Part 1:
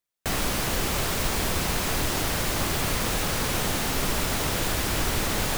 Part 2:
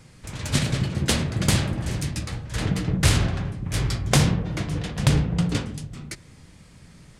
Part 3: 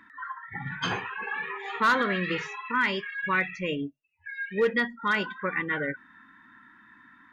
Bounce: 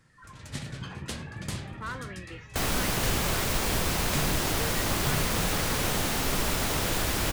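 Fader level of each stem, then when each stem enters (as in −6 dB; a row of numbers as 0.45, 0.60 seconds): −1.5, −14.5, −15.0 decibels; 2.30, 0.00, 0.00 seconds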